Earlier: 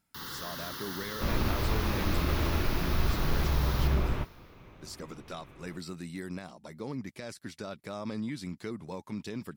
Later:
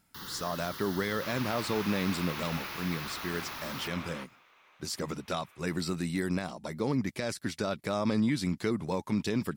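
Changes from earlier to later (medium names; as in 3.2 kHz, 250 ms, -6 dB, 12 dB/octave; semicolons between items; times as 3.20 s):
speech +8.0 dB; first sound: send -11.5 dB; second sound: add high-pass 1.1 kHz 12 dB/octave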